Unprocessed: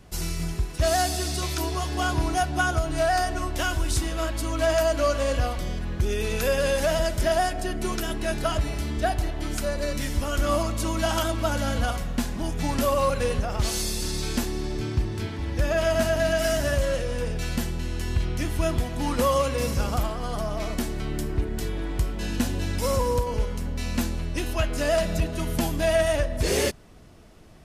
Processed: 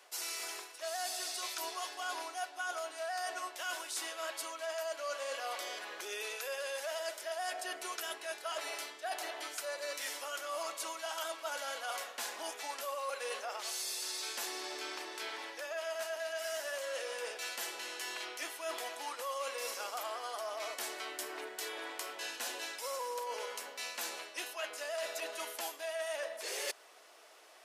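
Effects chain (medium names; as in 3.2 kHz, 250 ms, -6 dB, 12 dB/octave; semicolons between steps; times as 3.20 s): Bessel high-pass 740 Hz, order 6; reverse; compression 6:1, threshold -38 dBFS, peak gain reduction 16 dB; reverse; trim +1 dB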